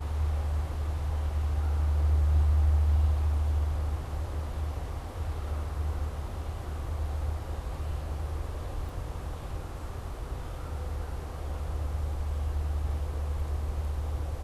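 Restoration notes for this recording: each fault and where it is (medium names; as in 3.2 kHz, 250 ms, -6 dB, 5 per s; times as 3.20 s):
8.89 s: dropout 2.3 ms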